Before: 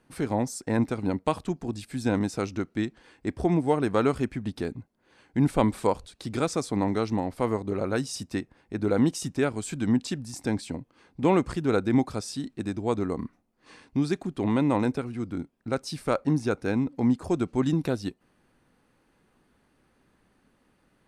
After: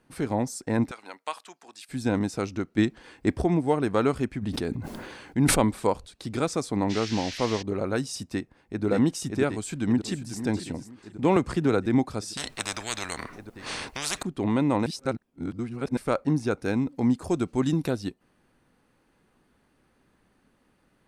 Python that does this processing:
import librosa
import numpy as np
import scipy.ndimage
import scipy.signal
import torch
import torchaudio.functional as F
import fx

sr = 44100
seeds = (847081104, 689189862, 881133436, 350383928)

y = fx.highpass(x, sr, hz=1100.0, slope=12, at=(0.91, 1.89))
y = fx.sustainer(y, sr, db_per_s=32.0, at=(4.41, 5.6), fade=0.02)
y = fx.dmg_noise_band(y, sr, seeds[0], low_hz=1600.0, high_hz=5900.0, level_db=-38.0, at=(6.89, 7.61), fade=0.02)
y = fx.echo_throw(y, sr, start_s=8.33, length_s=0.52, ms=580, feedback_pct=65, wet_db=-3.0)
y = fx.echo_throw(y, sr, start_s=9.54, length_s=0.88, ms=490, feedback_pct=25, wet_db=-12.0)
y = fx.band_squash(y, sr, depth_pct=100, at=(11.36, 11.86))
y = fx.spectral_comp(y, sr, ratio=10.0, at=(12.37, 14.23))
y = fx.high_shelf(y, sr, hz=4800.0, db=6.0, at=(16.62, 17.91))
y = fx.edit(y, sr, fx.clip_gain(start_s=2.78, length_s=0.64, db=6.0),
    fx.reverse_span(start_s=14.86, length_s=1.11), tone=tone)